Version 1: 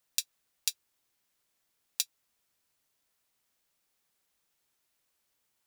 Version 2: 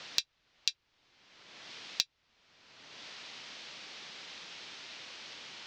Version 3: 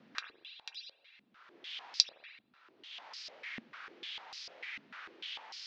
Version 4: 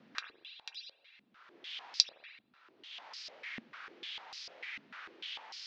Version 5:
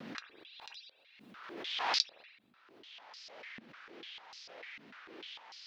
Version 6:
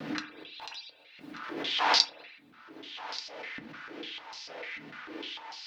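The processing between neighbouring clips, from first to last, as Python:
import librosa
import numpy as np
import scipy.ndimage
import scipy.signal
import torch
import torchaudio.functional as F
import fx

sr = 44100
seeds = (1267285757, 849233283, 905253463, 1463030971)

y1 = scipy.signal.sosfilt(scipy.signal.bessel(8, 3100.0, 'lowpass', norm='mag', fs=sr, output='sos'), x)
y1 = fx.band_squash(y1, sr, depth_pct=100)
y1 = y1 * librosa.db_to_amplitude(13.5)
y2 = fx.rev_spring(y1, sr, rt60_s=1.8, pass_ms=(40, 57), chirp_ms=70, drr_db=5.0)
y2 = fx.dynamic_eq(y2, sr, hz=1800.0, q=1.2, threshold_db=-57.0, ratio=4.0, max_db=5)
y2 = fx.filter_held_bandpass(y2, sr, hz=6.7, low_hz=230.0, high_hz=5000.0)
y2 = y2 * librosa.db_to_amplitude(7.5)
y3 = y2
y4 = fx.vibrato(y3, sr, rate_hz=1.9, depth_cents=48.0)
y4 = fx.pre_swell(y4, sr, db_per_s=39.0)
y4 = y4 * librosa.db_to_amplitude(-5.5)
y5 = y4 + 10.0 ** (-16.5 / 20.0) * np.pad(y4, (int(1184 * sr / 1000.0), 0))[:len(y4)]
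y5 = fx.rev_fdn(y5, sr, rt60_s=0.34, lf_ratio=1.25, hf_ratio=0.45, size_ms=20.0, drr_db=2.5)
y5 = y5 * librosa.db_to_amplitude(6.5)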